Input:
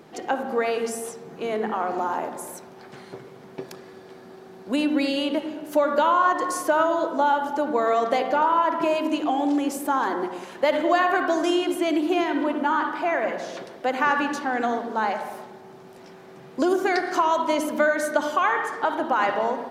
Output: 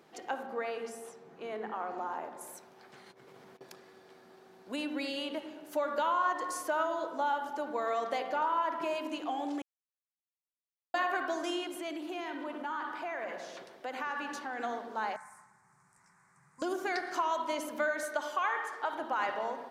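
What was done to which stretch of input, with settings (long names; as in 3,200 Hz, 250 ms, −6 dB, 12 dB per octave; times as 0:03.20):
0:00.46–0:02.41: high-shelf EQ 3,800 Hz −9 dB
0:03.06–0:03.61: compressor whose output falls as the input rises −45 dBFS
0:09.62–0:10.94: silence
0:11.64–0:14.59: downward compressor 3 to 1, threshold −23 dBFS
0:15.16–0:16.62: drawn EQ curve 150 Hz 0 dB, 340 Hz −25 dB, 670 Hz −20 dB, 1,000 Hz −2 dB, 2,100 Hz −4 dB, 3,100 Hz −28 dB, 5,000 Hz −10 dB, 8,400 Hz +8 dB, 14,000 Hz −17 dB
0:18.03–0:18.93: high-pass filter 340 Hz
whole clip: low-shelf EQ 440 Hz −8.5 dB; level −8.5 dB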